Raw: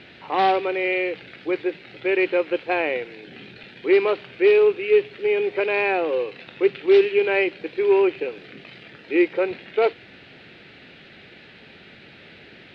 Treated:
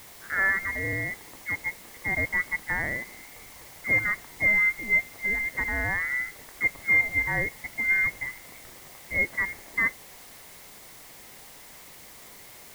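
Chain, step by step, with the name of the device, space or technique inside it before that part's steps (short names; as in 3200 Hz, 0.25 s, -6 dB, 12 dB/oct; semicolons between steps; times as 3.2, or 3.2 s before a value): scrambled radio voice (BPF 350–2900 Hz; inverted band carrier 2500 Hz; white noise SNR 19 dB); gain -5 dB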